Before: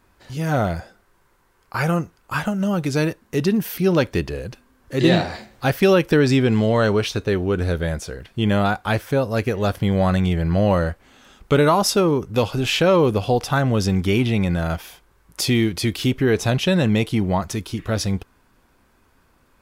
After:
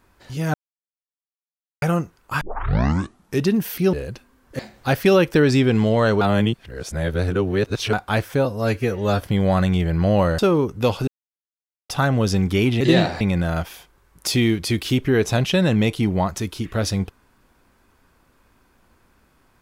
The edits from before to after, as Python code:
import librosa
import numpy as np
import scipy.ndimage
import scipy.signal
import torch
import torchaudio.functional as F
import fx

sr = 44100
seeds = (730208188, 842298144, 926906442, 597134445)

y = fx.edit(x, sr, fx.silence(start_s=0.54, length_s=1.28),
    fx.tape_start(start_s=2.41, length_s=1.01),
    fx.cut(start_s=3.93, length_s=0.37),
    fx.move(start_s=4.96, length_s=0.4, to_s=14.34),
    fx.reverse_span(start_s=6.98, length_s=1.72),
    fx.stretch_span(start_s=9.22, length_s=0.51, factor=1.5),
    fx.cut(start_s=10.9, length_s=1.02),
    fx.silence(start_s=12.61, length_s=0.82), tone=tone)